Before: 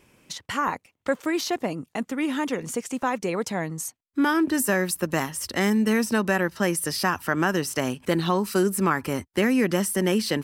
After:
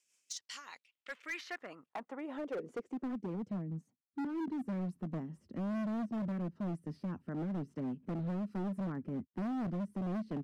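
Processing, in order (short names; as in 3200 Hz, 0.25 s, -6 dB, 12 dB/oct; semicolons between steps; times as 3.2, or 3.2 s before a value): rotary speaker horn 5 Hz; band-pass sweep 6800 Hz -> 200 Hz, 0.26–3.38; overloaded stage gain 33 dB; gain -1.5 dB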